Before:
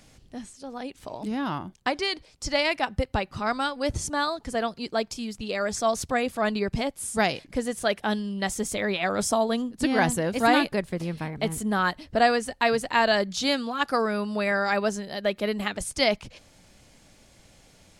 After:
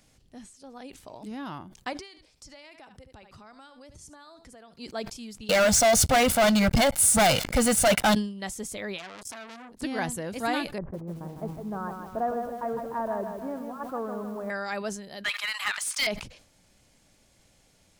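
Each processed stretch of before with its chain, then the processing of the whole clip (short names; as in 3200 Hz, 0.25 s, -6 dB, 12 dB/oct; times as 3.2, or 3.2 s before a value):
1.93–4.73 echo 74 ms -17.5 dB + compressor, threshold -39 dBFS
5.49–8.15 notch 410 Hz, Q 6.6 + comb 1.4 ms, depth 76% + sample leveller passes 5
8.98–9.82 compressor 2.5:1, threshold -27 dBFS + core saturation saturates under 3000 Hz
10.78–14.5 inverse Chebyshev low-pass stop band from 3900 Hz, stop band 60 dB + lo-fi delay 0.155 s, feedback 55%, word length 8-bit, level -6 dB
15.24–16.07 steep high-pass 1000 Hz + overdrive pedal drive 23 dB, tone 4100 Hz, clips at -9 dBFS
whole clip: high shelf 7800 Hz +5.5 dB; sustainer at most 95 dB/s; gain -8 dB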